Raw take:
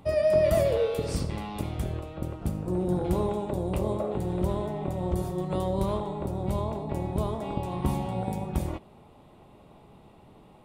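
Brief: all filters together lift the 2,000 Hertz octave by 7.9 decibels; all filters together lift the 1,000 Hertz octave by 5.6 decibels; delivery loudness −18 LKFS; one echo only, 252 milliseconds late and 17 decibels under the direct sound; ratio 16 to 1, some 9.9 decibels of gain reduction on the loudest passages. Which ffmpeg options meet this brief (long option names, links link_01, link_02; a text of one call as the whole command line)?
ffmpeg -i in.wav -af "equalizer=frequency=1000:width_type=o:gain=5.5,equalizer=frequency=2000:width_type=o:gain=8,acompressor=threshold=-26dB:ratio=16,aecho=1:1:252:0.141,volume=14dB" out.wav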